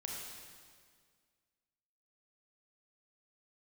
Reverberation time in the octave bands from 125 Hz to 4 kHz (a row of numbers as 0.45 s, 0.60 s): 2.0 s, 2.0 s, 1.9 s, 1.8 s, 1.7 s, 1.7 s